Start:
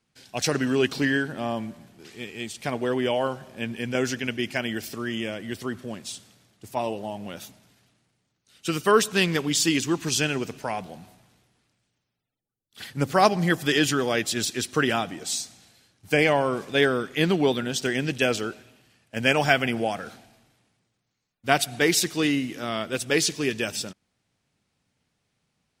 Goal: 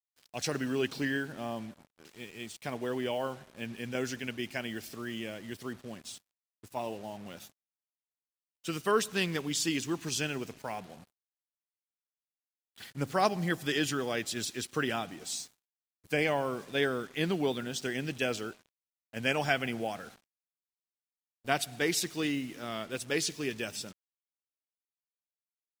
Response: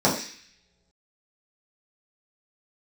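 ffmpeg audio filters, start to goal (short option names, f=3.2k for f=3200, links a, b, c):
-af "acrusher=bits=6:mix=0:aa=0.5,volume=-8.5dB"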